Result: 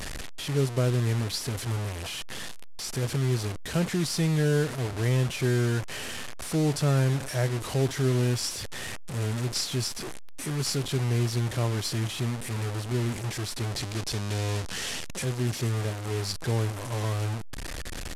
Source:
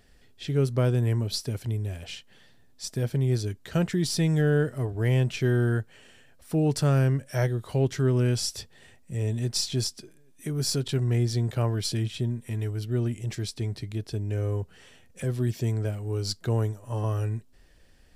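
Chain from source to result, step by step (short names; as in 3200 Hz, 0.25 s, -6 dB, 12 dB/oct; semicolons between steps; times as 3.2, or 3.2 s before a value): delta modulation 64 kbps, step -27.5 dBFS; 13.7–15.24 dynamic EQ 5300 Hz, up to +6 dB, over -51 dBFS, Q 0.72; gain -1.5 dB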